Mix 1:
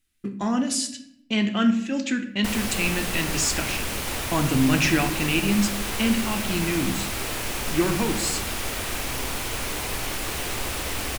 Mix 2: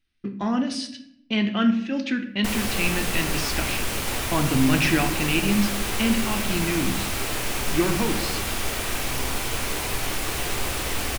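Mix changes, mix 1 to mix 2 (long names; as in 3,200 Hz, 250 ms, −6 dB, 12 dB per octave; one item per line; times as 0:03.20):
speech: add Savitzky-Golay smoothing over 15 samples
background: send +9.0 dB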